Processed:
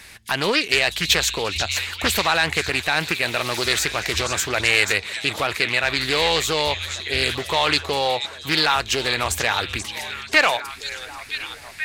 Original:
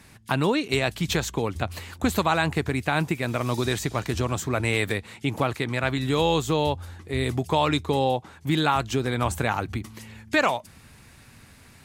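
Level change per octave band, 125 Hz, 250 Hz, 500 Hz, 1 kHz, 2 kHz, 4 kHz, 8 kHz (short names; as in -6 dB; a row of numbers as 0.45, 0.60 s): -6.0, -5.0, +1.0, +2.0, +9.0, +11.5, +10.0 dB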